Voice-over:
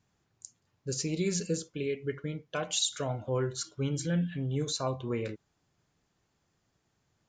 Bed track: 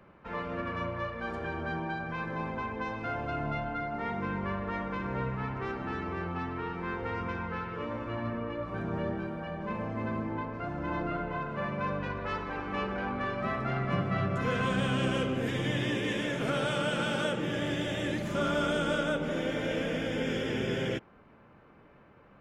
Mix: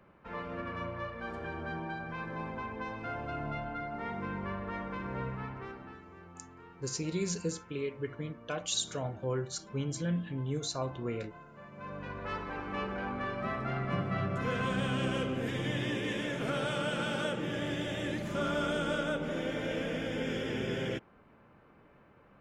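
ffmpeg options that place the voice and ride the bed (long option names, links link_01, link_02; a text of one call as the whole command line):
ffmpeg -i stem1.wav -i stem2.wav -filter_complex "[0:a]adelay=5950,volume=-3dB[link_01];[1:a]volume=10dB,afade=type=out:start_time=5.3:duration=0.72:silence=0.223872,afade=type=in:start_time=11.71:duration=0.63:silence=0.199526[link_02];[link_01][link_02]amix=inputs=2:normalize=0" out.wav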